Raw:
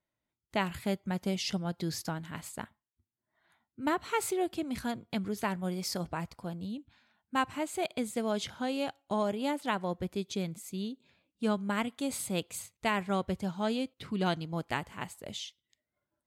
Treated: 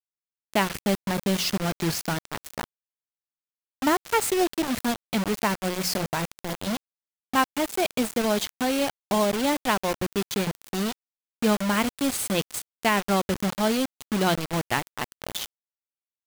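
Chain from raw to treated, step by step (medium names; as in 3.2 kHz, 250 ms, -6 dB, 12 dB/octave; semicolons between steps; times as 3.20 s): hum notches 60/120/180 Hz; bit crusher 6-bit; trim +7.5 dB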